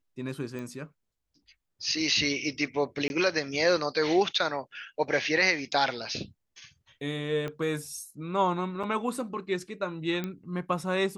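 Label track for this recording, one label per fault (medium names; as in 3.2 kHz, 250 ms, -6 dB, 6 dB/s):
0.590000	0.590000	pop -27 dBFS
3.080000	3.100000	dropout 21 ms
7.480000	7.480000	pop -22 dBFS
8.830000	8.840000	dropout 5.4 ms
10.240000	10.240000	pop -19 dBFS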